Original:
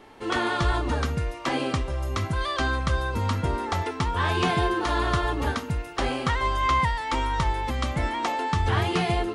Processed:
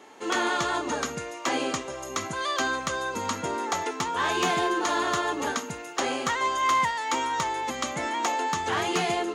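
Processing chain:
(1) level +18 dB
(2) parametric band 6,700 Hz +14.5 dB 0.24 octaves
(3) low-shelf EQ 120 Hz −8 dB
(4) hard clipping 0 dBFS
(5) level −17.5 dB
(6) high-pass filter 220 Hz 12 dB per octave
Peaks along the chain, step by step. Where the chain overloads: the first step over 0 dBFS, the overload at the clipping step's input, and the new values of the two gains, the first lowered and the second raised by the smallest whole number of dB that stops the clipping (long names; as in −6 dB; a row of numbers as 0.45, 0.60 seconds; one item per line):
+7.0, +8.0, +8.0, 0.0, −17.5, −12.5 dBFS
step 1, 8.0 dB
step 1 +10 dB, step 5 −9.5 dB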